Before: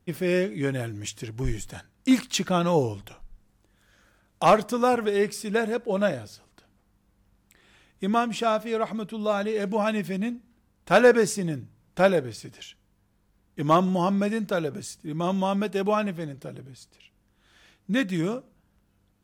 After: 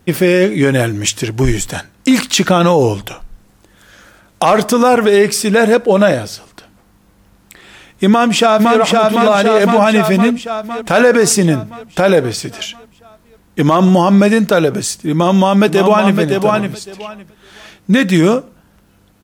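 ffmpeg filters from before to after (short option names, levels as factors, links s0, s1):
-filter_complex "[0:a]asplit=2[s0][s1];[s1]afade=t=in:st=8.08:d=0.01,afade=t=out:st=8.77:d=0.01,aecho=0:1:510|1020|1530|2040|2550|3060|3570|4080|4590:0.749894|0.449937|0.269962|0.161977|0.0971863|0.0583118|0.0349871|0.0209922|0.0125953[s2];[s0][s2]amix=inputs=2:normalize=0,asplit=2[s3][s4];[s4]afade=t=in:st=15.11:d=0.01,afade=t=out:st=16.18:d=0.01,aecho=0:1:560|1120|1680:0.446684|0.0670025|0.0100504[s5];[s3][s5]amix=inputs=2:normalize=0,lowshelf=f=140:g=-7,alimiter=level_in=10:limit=0.891:release=50:level=0:latency=1,volume=0.891"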